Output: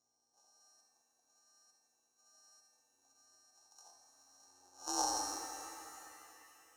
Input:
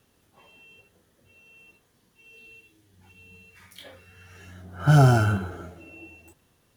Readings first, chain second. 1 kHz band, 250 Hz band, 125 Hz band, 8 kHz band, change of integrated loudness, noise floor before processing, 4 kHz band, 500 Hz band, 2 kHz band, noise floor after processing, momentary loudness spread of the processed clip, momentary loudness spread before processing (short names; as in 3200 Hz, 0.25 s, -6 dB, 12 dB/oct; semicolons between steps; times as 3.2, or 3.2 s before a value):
-11.0 dB, -24.5 dB, under -40 dB, +4.0 dB, -18.5 dB, -66 dBFS, -3.5 dB, -21.0 dB, -22.0 dB, -80 dBFS, 21 LU, 14 LU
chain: sample sorter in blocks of 32 samples; high shelf 4100 Hz +9.5 dB; hum 60 Hz, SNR 35 dB; ring modulator 180 Hz; double band-pass 2200 Hz, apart 2.9 oct; shimmer reverb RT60 3 s, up +7 st, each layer -8 dB, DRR 4 dB; gain -3.5 dB